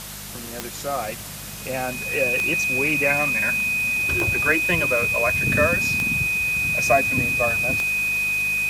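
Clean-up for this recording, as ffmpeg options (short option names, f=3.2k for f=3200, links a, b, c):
-af "adeclick=t=4,bandreject=f=50.8:t=h:w=4,bandreject=f=101.6:t=h:w=4,bandreject=f=152.4:t=h:w=4,bandreject=f=203.2:t=h:w=4,bandreject=f=2.5k:w=30,afftdn=nr=30:nf=-34"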